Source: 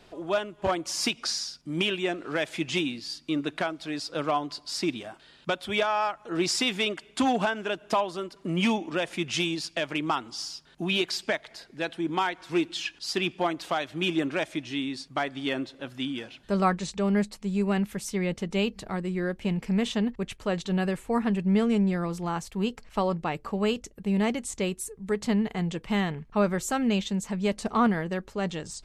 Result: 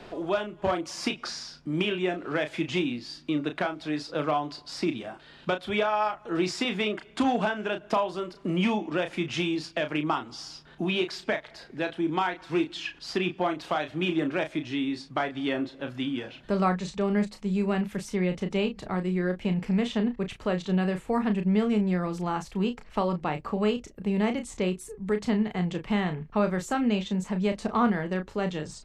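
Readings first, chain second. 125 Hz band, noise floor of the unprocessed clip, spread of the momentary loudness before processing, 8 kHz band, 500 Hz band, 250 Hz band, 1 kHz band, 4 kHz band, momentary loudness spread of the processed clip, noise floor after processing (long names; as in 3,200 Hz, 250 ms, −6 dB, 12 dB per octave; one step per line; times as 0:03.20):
+0.5 dB, −56 dBFS, 7 LU, −8.0 dB, +0.5 dB, +0.5 dB, 0.0 dB, −4.0 dB, 6 LU, −52 dBFS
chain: low-pass filter 2,700 Hz 6 dB per octave
double-tracking delay 33 ms −8 dB
multiband upward and downward compressor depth 40%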